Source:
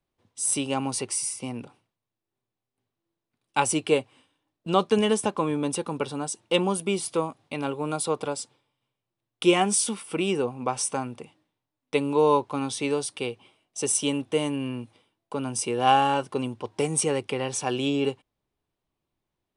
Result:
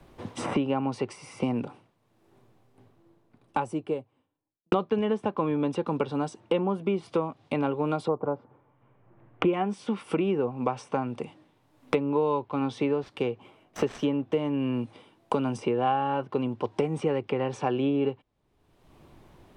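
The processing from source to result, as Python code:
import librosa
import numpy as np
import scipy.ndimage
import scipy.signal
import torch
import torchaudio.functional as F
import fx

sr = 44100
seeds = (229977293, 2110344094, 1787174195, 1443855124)

y = fx.studio_fade_out(x, sr, start_s=1.37, length_s=3.35)
y = fx.lowpass(y, sr, hz=fx.line((8.07, 1100.0), (9.52, 2400.0)), slope=24, at=(8.07, 9.52), fade=0.02)
y = fx.dead_time(y, sr, dead_ms=0.052, at=(12.87, 14.51))
y = fx.env_lowpass_down(y, sr, base_hz=2600.0, full_db=-23.0)
y = fx.high_shelf(y, sr, hz=2600.0, db=-11.5)
y = fx.band_squash(y, sr, depth_pct=100)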